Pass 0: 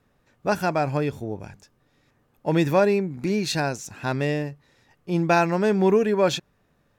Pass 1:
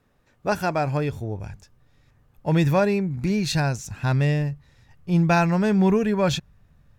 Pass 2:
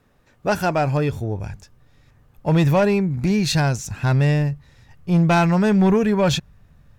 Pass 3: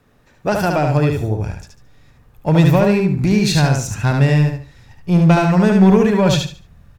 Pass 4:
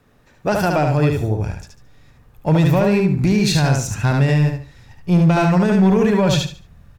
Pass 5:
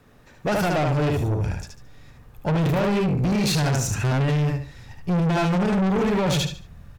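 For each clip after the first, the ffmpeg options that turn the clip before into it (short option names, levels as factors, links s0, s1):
-af "asubboost=boost=8:cutoff=120"
-af "asoftclip=type=tanh:threshold=0.178,volume=1.78"
-filter_complex "[0:a]acrossover=split=470[s0][s1];[s1]acompressor=threshold=0.0891:ratio=4[s2];[s0][s2]amix=inputs=2:normalize=0,aecho=1:1:73|146|219|292:0.631|0.17|0.046|0.0124,volume=1.5"
-af "alimiter=limit=0.422:level=0:latency=1:release=35"
-af "asoftclip=type=tanh:threshold=0.0891,volume=1.26"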